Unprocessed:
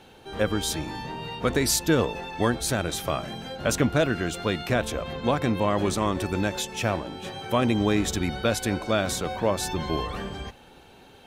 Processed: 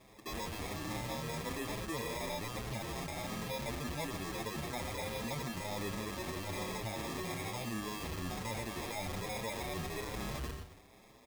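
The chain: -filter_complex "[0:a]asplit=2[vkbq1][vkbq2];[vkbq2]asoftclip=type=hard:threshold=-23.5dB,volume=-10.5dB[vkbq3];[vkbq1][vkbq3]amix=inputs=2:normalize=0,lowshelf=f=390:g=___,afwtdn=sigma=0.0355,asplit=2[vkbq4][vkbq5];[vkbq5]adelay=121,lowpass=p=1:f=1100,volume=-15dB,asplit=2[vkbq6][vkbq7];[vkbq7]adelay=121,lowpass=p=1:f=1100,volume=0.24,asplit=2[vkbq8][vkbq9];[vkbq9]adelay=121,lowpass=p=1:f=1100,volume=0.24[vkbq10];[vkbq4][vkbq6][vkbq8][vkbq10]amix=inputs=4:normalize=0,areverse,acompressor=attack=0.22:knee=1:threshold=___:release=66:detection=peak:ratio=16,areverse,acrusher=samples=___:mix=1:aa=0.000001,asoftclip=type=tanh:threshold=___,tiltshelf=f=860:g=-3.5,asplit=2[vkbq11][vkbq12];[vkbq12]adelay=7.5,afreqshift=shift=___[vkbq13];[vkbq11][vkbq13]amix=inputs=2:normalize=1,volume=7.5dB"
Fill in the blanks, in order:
5.5, -31dB, 30, -39.5dB, 1.2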